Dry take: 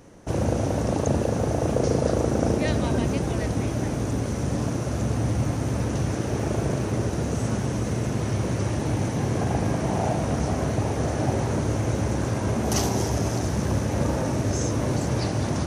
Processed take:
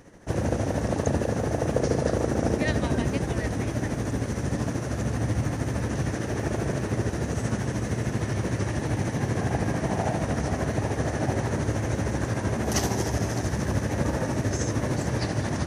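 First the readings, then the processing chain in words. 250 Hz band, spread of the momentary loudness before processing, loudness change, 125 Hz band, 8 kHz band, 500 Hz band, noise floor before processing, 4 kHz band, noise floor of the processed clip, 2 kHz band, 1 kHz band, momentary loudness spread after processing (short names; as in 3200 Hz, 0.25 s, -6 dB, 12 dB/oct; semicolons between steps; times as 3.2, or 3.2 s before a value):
-2.0 dB, 3 LU, -2.0 dB, -2.0 dB, -2.0 dB, -2.0 dB, -28 dBFS, -2.0 dB, -32 dBFS, +2.0 dB, -2.0 dB, 3 LU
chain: bell 1800 Hz +7.5 dB 0.36 oct; tremolo 13 Hz, depth 48%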